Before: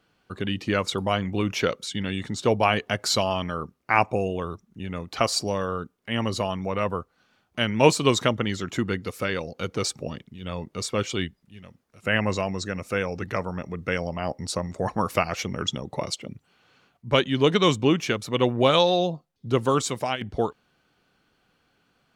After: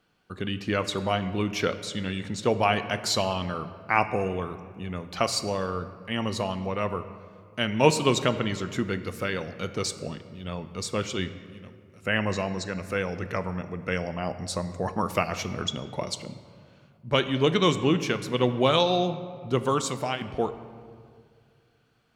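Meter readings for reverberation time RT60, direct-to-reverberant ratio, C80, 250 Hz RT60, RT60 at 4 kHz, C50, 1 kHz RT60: 2.1 s, 10.0 dB, 13.0 dB, 2.4 s, 1.2 s, 12.0 dB, 2.0 s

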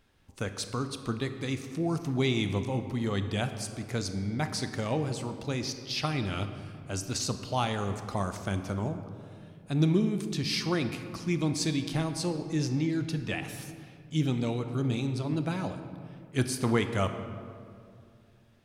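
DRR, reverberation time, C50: 8.0 dB, 2.4 s, 9.0 dB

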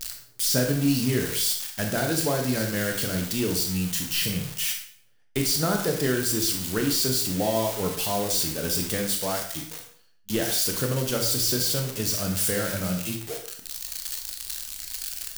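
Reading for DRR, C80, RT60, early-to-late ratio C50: 2.5 dB, 10.0 dB, 0.55 s, 6.0 dB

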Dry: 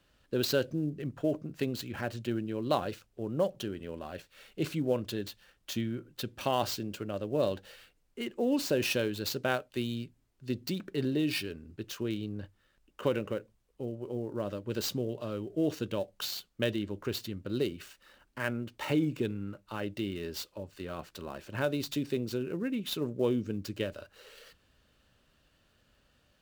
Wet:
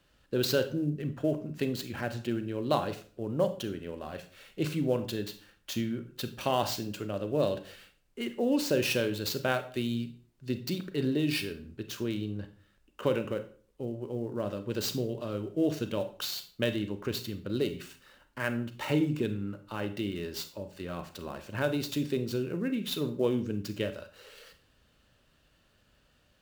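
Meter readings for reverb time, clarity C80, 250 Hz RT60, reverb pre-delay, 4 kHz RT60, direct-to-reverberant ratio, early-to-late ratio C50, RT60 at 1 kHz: 0.45 s, 17.0 dB, 0.55 s, 30 ms, 0.35 s, 9.0 dB, 12.5 dB, 0.40 s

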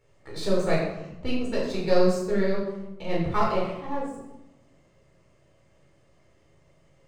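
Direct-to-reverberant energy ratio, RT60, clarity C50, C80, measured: −6.0 dB, 0.95 s, 2.5 dB, 4.5 dB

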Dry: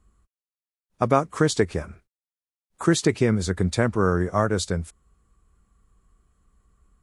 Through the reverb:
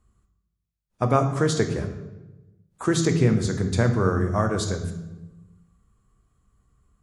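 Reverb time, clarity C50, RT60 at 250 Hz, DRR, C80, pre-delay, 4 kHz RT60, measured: 1.1 s, 9.0 dB, 1.4 s, 5.5 dB, 10.5 dB, 3 ms, 0.75 s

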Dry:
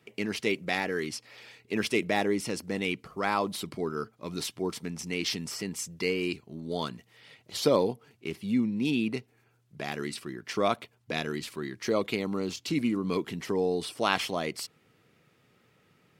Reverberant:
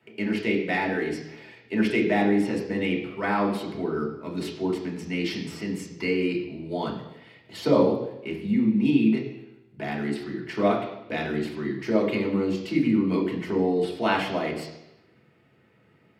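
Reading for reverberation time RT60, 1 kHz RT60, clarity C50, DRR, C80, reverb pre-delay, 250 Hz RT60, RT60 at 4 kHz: 0.90 s, 0.90 s, 6.0 dB, −3.0 dB, 8.5 dB, 3 ms, 0.85 s, 0.90 s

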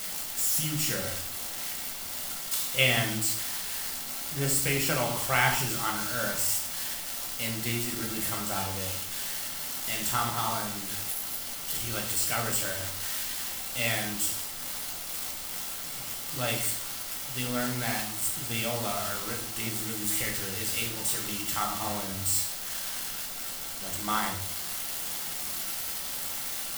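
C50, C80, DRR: 6.5 dB, 9.5 dB, 0.5 dB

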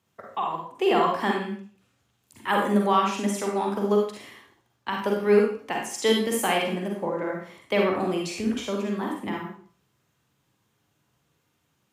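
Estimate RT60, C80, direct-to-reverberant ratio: 0.45 s, 7.0 dB, −0.5 dB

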